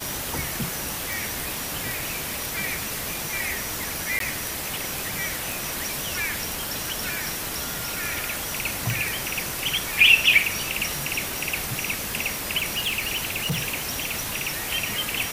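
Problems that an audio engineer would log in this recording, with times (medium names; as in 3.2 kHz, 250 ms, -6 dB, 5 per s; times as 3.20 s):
1.13 s: pop
4.19–4.20 s: dropout 13 ms
5.52 s: pop
8.90 s: pop
12.59–14.60 s: clipped -21 dBFS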